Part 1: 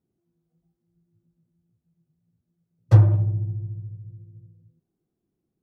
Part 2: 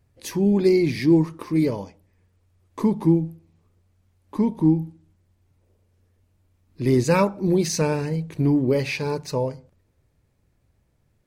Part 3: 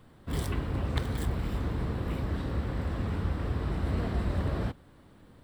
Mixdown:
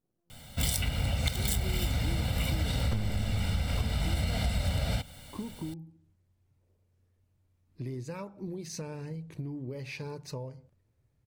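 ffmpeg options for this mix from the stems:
-filter_complex "[0:a]alimiter=limit=0.316:level=0:latency=1:release=229,aeval=exprs='max(val(0),0)':c=same,volume=1[s0];[1:a]equalizer=f=120:t=o:w=0.54:g=7.5,acompressor=threshold=0.0501:ratio=12,adelay=1000,volume=0.355[s1];[2:a]aecho=1:1:1.4:0.93,aexciter=amount=5.2:drive=3.3:freq=2100,adelay=300,volume=1.26[s2];[s0][s1][s2]amix=inputs=3:normalize=0,acompressor=threshold=0.0562:ratio=12"

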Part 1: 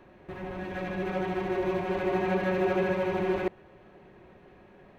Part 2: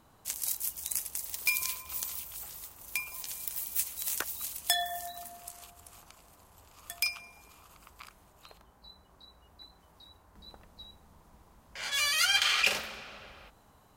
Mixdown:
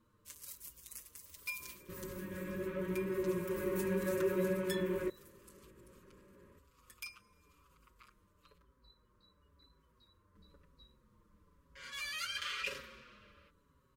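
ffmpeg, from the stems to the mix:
-filter_complex "[0:a]flanger=delay=15.5:depth=5.1:speed=0.66,adelay=1600,volume=0.668[s0];[1:a]asplit=2[s1][s2];[s2]adelay=6,afreqshift=-0.99[s3];[s1][s3]amix=inputs=2:normalize=1,volume=0.596[s4];[s0][s4]amix=inputs=2:normalize=0,asuperstop=centerf=750:order=8:qfactor=2,highshelf=f=2100:g=-9.5"

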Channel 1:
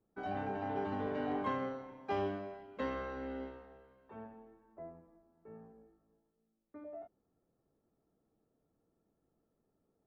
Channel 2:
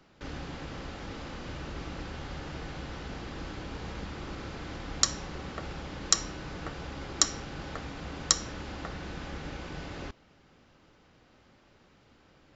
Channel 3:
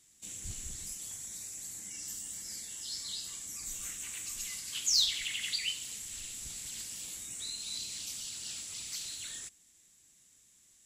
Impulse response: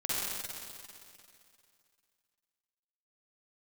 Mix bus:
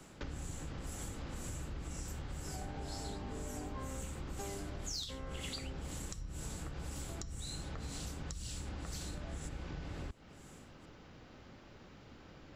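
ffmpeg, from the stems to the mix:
-filter_complex "[0:a]adelay=2300,volume=0.75[s0];[1:a]acrossover=split=140[s1][s2];[s2]acompressor=threshold=0.00631:ratio=6[s3];[s1][s3]amix=inputs=2:normalize=0,volume=1.41[s4];[2:a]tremolo=f=2:d=0.99,volume=1.12[s5];[s0][s4][s5]amix=inputs=3:normalize=0,lowshelf=f=370:g=4.5,acompressor=threshold=0.01:ratio=5"

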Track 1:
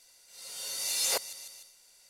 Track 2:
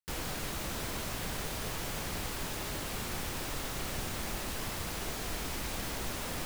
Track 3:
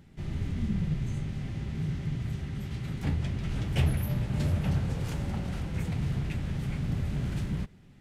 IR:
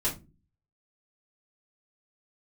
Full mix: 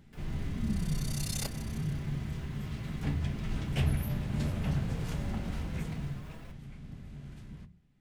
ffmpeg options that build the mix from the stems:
-filter_complex "[0:a]tremolo=f=32:d=0.947,adelay=300,volume=0.531[s0];[1:a]acrossover=split=3000[s1][s2];[s2]acompressor=threshold=0.00224:ratio=4:attack=1:release=60[s3];[s1][s3]amix=inputs=2:normalize=0,alimiter=level_in=2.51:limit=0.0631:level=0:latency=1:release=52,volume=0.398,asplit=2[s4][s5];[s5]adelay=5.5,afreqshift=2.5[s6];[s4][s6]amix=inputs=2:normalize=1,adelay=50,volume=0.299,asplit=2[s7][s8];[s8]volume=0.282[s9];[2:a]equalizer=f=470:t=o:w=0.41:g=-2,volume=0.668,afade=t=out:st=5.78:d=0.47:silence=0.237137,asplit=2[s10][s11];[s11]volume=0.15[s12];[3:a]atrim=start_sample=2205[s13];[s9][s12]amix=inputs=2:normalize=0[s14];[s14][s13]afir=irnorm=-1:irlink=0[s15];[s0][s7][s10][s15]amix=inputs=4:normalize=0"

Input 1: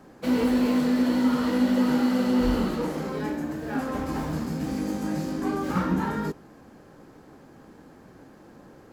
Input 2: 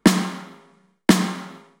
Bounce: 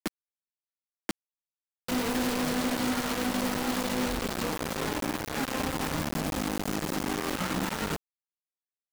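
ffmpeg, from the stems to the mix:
-filter_complex "[0:a]adynamicequalizer=threshold=0.0316:dfrequency=260:dqfactor=3.7:tfrequency=260:tqfactor=3.7:attack=5:release=100:ratio=0.375:range=1.5:mode=cutabove:tftype=bell,alimiter=limit=0.0794:level=0:latency=1:release=149,adelay=1650,volume=0.841[s0];[1:a]acompressor=threshold=0.0355:ratio=2,volume=0.266[s1];[s0][s1]amix=inputs=2:normalize=0,acrusher=bits=4:mix=0:aa=0.000001"

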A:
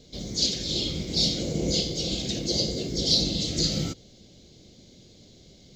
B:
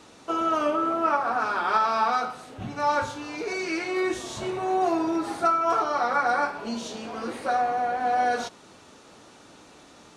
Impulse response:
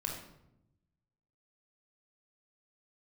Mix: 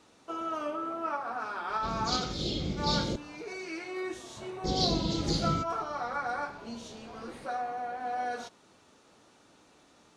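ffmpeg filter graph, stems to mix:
-filter_complex "[0:a]highshelf=f=3800:g=-12,adelay=1700,volume=0.794,asplit=3[s0][s1][s2];[s0]atrim=end=3.16,asetpts=PTS-STARTPTS,afade=t=out:st=3.156:d=0.004:c=hsin[s3];[s1]atrim=start=3.16:end=4.64,asetpts=PTS-STARTPTS,volume=0[s4];[s2]atrim=start=4.64,asetpts=PTS-STARTPTS,afade=t=in:d=0.004:c=hsin[s5];[s3][s4][s5]concat=n=3:v=0:a=1,asplit=2[s6][s7];[s7]volume=0.0794[s8];[1:a]volume=0.316[s9];[2:a]atrim=start_sample=2205[s10];[s8][s10]afir=irnorm=-1:irlink=0[s11];[s6][s9][s11]amix=inputs=3:normalize=0"

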